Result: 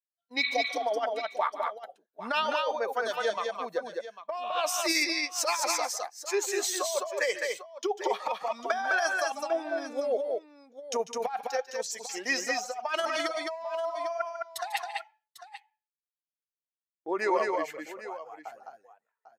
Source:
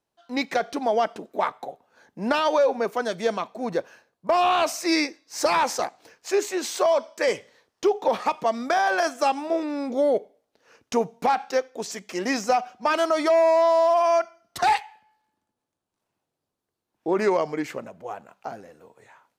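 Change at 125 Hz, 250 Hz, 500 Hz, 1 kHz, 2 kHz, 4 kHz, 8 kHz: can't be measured, −11.5 dB, −8.0 dB, −7.5 dB, −1.0 dB, −0.5 dB, +2.0 dB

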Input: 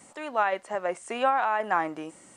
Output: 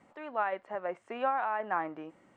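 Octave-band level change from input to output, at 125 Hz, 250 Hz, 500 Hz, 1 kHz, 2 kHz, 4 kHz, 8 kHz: can't be measured, −6.0 dB, −6.0 dB, −6.0 dB, −7.0 dB, −12.0 dB, below −25 dB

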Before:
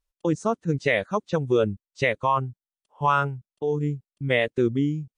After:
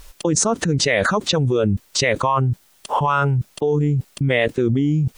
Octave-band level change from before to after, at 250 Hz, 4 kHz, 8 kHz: +5.5 dB, +12.5 dB, can't be measured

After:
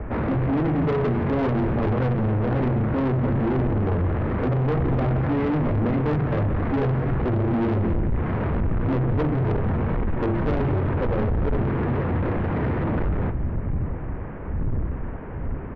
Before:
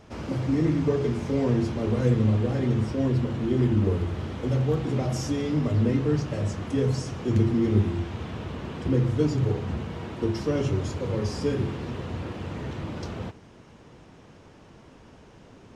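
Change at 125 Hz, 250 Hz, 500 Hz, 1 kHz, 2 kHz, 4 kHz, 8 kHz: +3.0 dB, +2.5 dB, +2.5 dB, +9.0 dB, +6.5 dB, can't be measured, below −20 dB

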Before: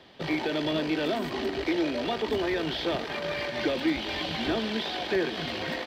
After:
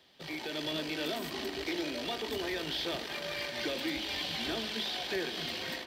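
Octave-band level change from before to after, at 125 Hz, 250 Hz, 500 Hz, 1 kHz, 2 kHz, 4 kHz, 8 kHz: −9.0, −9.5, −8.5, −8.0, −5.0, −1.5, +3.0 decibels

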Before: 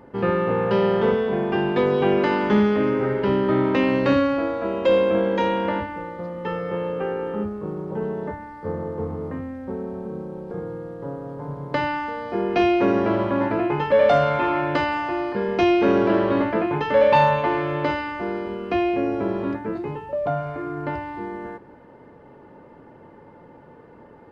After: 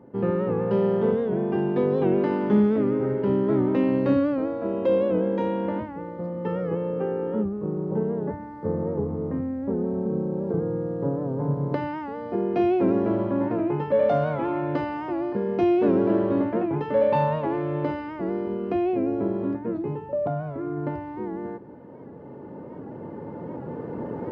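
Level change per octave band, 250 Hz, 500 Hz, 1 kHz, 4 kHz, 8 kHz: −0.5 dB, −2.5 dB, −7.5 dB, below −10 dB, can't be measured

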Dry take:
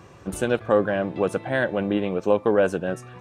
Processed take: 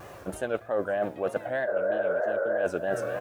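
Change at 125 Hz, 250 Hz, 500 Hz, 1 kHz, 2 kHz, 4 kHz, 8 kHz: −12.0 dB, −12.5 dB, −4.5 dB, −5.0 dB, −4.0 dB, below −10 dB, can't be measured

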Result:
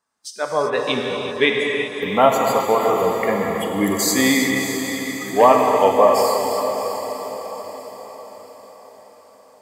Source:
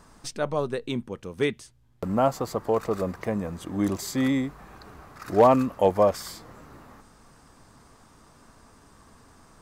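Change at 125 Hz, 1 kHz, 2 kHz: −0.5, +10.0, +15.5 decibels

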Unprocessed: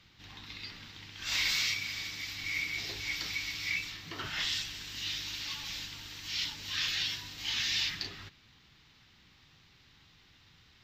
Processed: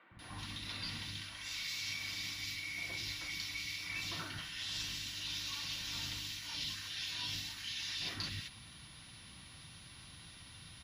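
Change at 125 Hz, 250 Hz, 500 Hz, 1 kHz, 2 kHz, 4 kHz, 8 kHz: +0.5, −0.5, −4.0, −3.0, −7.0, −5.5, −4.0 decibels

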